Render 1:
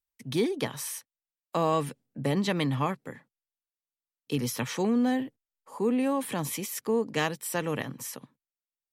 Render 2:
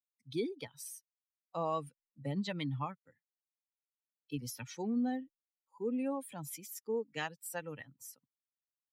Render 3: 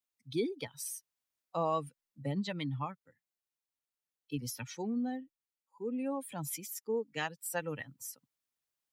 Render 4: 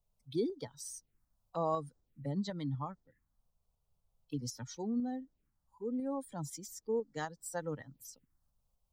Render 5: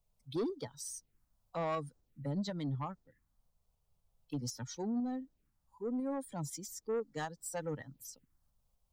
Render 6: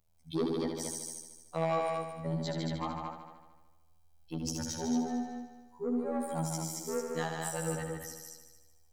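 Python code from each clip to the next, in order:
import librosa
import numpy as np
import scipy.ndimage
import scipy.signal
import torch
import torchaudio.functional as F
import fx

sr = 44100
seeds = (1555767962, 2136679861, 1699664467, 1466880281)

y1 = fx.bin_expand(x, sr, power=2.0)
y1 = y1 * librosa.db_to_amplitude(-6.0)
y2 = fx.rider(y1, sr, range_db=4, speed_s=0.5)
y2 = y2 * librosa.db_to_amplitude(2.0)
y3 = fx.dmg_noise_colour(y2, sr, seeds[0], colour='brown', level_db=-75.0)
y3 = fx.env_phaser(y3, sr, low_hz=290.0, high_hz=2600.0, full_db=-40.0)
y3 = fx.tremolo_shape(y3, sr, shape='saw_up', hz=4.0, depth_pct=35)
y3 = y3 * librosa.db_to_amplitude(1.0)
y4 = 10.0 ** (-31.5 / 20.0) * np.tanh(y3 / 10.0 ** (-31.5 / 20.0))
y4 = y4 * librosa.db_to_amplitude(2.0)
y5 = fx.robotise(y4, sr, hz=81.4)
y5 = fx.echo_heads(y5, sr, ms=75, heads='all three', feedback_pct=41, wet_db=-6)
y5 = y5 * librosa.db_to_amplitude(5.5)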